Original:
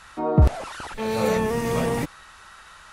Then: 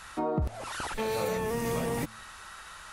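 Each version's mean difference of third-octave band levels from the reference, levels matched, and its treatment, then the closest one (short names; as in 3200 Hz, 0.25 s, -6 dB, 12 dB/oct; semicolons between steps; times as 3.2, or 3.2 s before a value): 5.5 dB: high shelf 10000 Hz +9 dB; de-hum 110.1 Hz, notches 2; compressor 8:1, threshold -27 dBFS, peak gain reduction 15.5 dB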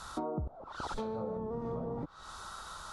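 11.5 dB: treble ducked by the level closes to 960 Hz, closed at -19.5 dBFS; band shelf 2200 Hz -14 dB 1 oct; compressor 16:1, threshold -37 dBFS, peak gain reduction 26.5 dB; gain +3 dB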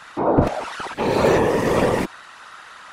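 3.0 dB: HPF 170 Hz 12 dB/oct; high shelf 7800 Hz -10.5 dB; whisperiser; gain +6 dB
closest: third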